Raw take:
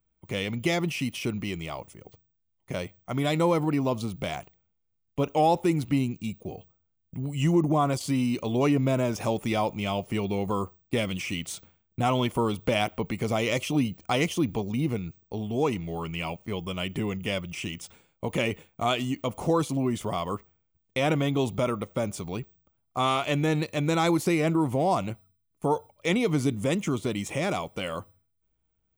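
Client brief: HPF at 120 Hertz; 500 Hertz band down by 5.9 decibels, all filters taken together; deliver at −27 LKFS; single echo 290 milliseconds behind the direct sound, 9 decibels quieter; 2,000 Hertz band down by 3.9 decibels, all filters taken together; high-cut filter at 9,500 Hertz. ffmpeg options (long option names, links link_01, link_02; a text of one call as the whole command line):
ffmpeg -i in.wav -af "highpass=120,lowpass=9500,equalizer=frequency=500:width_type=o:gain=-7.5,equalizer=frequency=2000:width_type=o:gain=-4.5,aecho=1:1:290:0.355,volume=3.5dB" out.wav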